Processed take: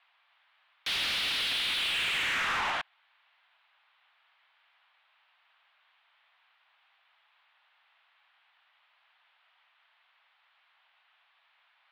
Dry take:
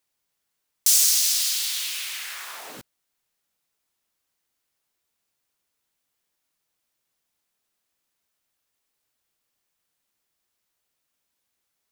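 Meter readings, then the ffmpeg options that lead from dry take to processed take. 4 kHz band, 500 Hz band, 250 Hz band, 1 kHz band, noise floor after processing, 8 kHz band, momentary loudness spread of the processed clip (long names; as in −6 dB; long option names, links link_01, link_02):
−2.5 dB, +5.5 dB, +5.5 dB, +10.0 dB, −70 dBFS, −23.5 dB, 7 LU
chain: -filter_complex "[0:a]highpass=frequency=570:width_type=q:width=0.5412,highpass=frequency=570:width_type=q:width=1.307,lowpass=frequency=3400:width_type=q:width=0.5176,lowpass=frequency=3400:width_type=q:width=0.7071,lowpass=frequency=3400:width_type=q:width=1.932,afreqshift=160,asplit=2[link_01][link_02];[link_02]highpass=frequency=720:poles=1,volume=25dB,asoftclip=type=tanh:threshold=-23.5dB[link_03];[link_01][link_03]amix=inputs=2:normalize=0,lowpass=frequency=2700:poles=1,volume=-6dB,volume=2dB"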